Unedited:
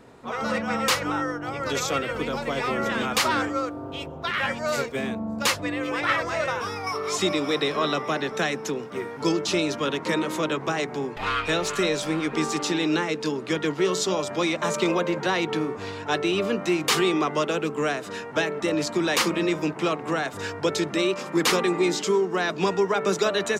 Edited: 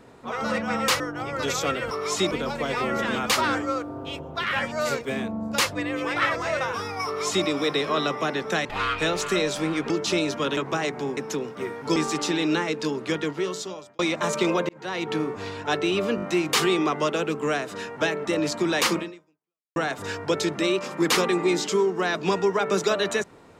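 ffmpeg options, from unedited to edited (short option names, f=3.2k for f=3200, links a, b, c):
-filter_complex "[0:a]asplit=15[a][b][c][d][e][f][g][h][i][j][k][l][m][n][o];[a]atrim=end=1.002[p];[b]atrim=start=1.268:end=2.182[q];[c]atrim=start=6.928:end=7.332[r];[d]atrim=start=2.178:end=8.522[s];[e]atrim=start=11.118:end=12.372[t];[f]atrim=start=9.308:end=9.982[u];[g]atrim=start=10.518:end=11.122[v];[h]atrim=start=8.518:end=9.312[w];[i]atrim=start=12.368:end=14.4,asetpts=PTS-STARTPTS,afade=t=out:st=1.102:d=0.93[x];[j]atrim=start=14.4:end=15.1,asetpts=PTS-STARTPTS,afade=t=in:d=0.004:c=hsin,afade=t=out:st=0.696:d=0.004:c=hsin[y];[k]atrim=start=15.1:end=16.592,asetpts=PTS-STARTPTS,afade=t=in:d=0.48[z];[l]atrim=start=16.568:end=16.592[aa];[m]atrim=start=16.568:end=16.592[ab];[n]atrim=start=16.568:end=20.11,asetpts=PTS-STARTPTS,afade=t=out:st=2.762:d=0.78:c=exp[ac];[o]atrim=start=20.11,asetpts=PTS-STARTPTS,afade=t=in:d=0.004:c=hsin[ad];[p][q]acrossfade=d=0.004:c1=hsin:c2=hsin[ae];[ae][r]acrossfade=d=0.004:c1=hsin:c2=hsin[af];[af][s]acrossfade=d=0.004:c1=hsin:c2=hsin[ag];[ag][t]acrossfade=d=0.004:c1=hsin:c2=hsin[ah];[ah][u]acrossfade=d=0.004:c1=hsin:c2=hsin[ai];[ai][v]acrossfade=d=0.004:c1=hsin:c2=hsin[aj];[aj][w]acrossfade=d=0.004:c1=hsin:c2=hsin[ak];[x][y][z]concat=n=3:v=0:a=1[al];[ak][al]acrossfade=d=0.004:c1=hsin:c2=hsin[am];[am][aa]acrossfade=d=0.004:c1=hsin:c2=hsin[an];[an][ab]acrossfade=d=0.004:c1=hsin:c2=hsin[ao];[ac][ad]concat=n=2:v=0:a=1[ap];[ao][ap]acrossfade=d=0.004:c1=hsin:c2=hsin"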